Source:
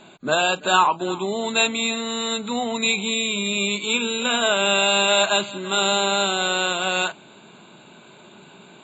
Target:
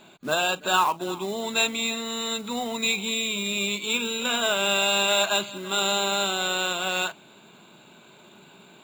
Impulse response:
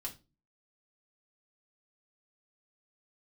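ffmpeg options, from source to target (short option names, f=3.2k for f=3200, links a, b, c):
-af "highshelf=f=2.5k:g=2.5,acrusher=bits=4:mode=log:mix=0:aa=0.000001,volume=-5dB"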